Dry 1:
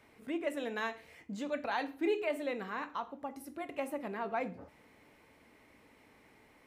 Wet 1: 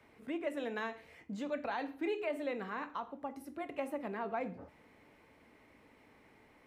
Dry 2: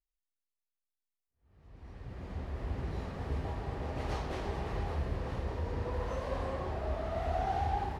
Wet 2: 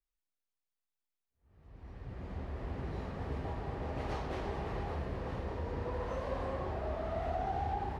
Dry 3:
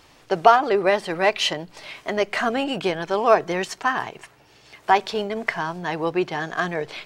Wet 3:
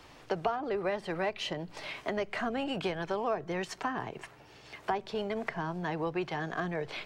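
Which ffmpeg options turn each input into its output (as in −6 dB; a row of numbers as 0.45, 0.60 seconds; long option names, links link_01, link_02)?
-filter_complex "[0:a]highshelf=frequency=4100:gain=-7,acrossover=split=130|540[link_01][link_02][link_03];[link_01]acompressor=threshold=-39dB:ratio=4[link_04];[link_02]acompressor=threshold=-37dB:ratio=4[link_05];[link_03]acompressor=threshold=-36dB:ratio=4[link_06];[link_04][link_05][link_06]amix=inputs=3:normalize=0"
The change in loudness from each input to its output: −2.0, −2.0, −12.5 LU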